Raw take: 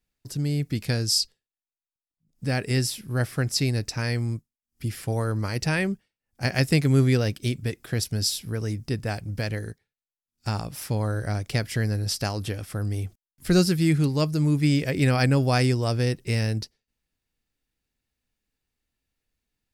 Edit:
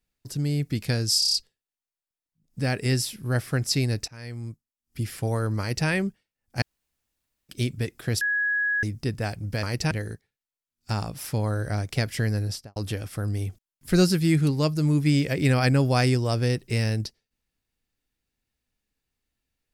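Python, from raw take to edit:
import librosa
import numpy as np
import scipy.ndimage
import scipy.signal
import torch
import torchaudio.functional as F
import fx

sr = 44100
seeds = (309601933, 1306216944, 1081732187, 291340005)

y = fx.studio_fade_out(x, sr, start_s=11.99, length_s=0.34)
y = fx.edit(y, sr, fx.stutter(start_s=1.19, slice_s=0.03, count=6),
    fx.fade_in_from(start_s=3.93, length_s=0.93, floor_db=-21.5),
    fx.duplicate(start_s=5.45, length_s=0.28, to_s=9.48),
    fx.room_tone_fill(start_s=6.47, length_s=0.87),
    fx.bleep(start_s=8.06, length_s=0.62, hz=1670.0, db=-21.5), tone=tone)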